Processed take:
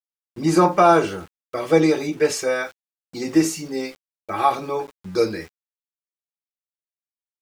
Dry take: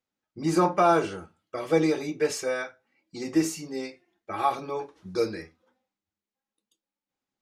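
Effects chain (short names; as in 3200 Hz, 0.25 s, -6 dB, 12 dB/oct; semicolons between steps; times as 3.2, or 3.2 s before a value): sample gate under -49 dBFS; gain +6.5 dB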